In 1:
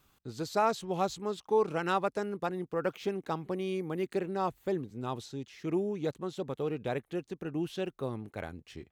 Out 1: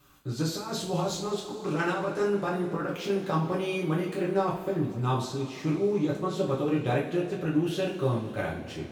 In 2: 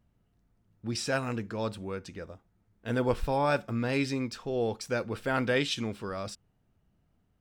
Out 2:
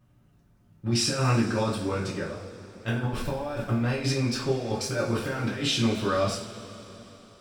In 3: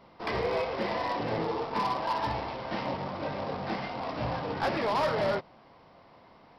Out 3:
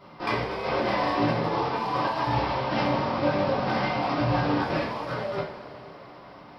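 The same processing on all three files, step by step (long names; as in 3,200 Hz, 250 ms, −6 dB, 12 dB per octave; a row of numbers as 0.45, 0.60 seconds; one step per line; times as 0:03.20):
compressor whose output falls as the input rises −32 dBFS, ratio −0.5
coupled-rooms reverb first 0.39 s, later 3.8 s, from −18 dB, DRR −6 dB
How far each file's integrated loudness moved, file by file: +4.5, +3.5, +5.0 LU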